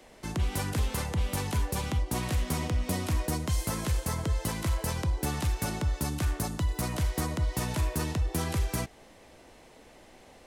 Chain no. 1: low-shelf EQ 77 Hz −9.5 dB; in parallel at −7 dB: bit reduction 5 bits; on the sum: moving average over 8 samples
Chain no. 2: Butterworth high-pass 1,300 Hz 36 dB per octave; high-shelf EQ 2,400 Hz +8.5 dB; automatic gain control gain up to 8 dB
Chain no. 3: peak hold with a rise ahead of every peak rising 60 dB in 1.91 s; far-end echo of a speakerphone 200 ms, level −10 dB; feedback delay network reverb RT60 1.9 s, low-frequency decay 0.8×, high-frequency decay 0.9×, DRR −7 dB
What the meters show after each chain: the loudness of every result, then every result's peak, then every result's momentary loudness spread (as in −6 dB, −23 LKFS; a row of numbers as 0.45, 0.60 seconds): −31.5, −23.5, −18.5 LKFS; −19.0, −7.0, −4.5 dBFS; 1, 2, 2 LU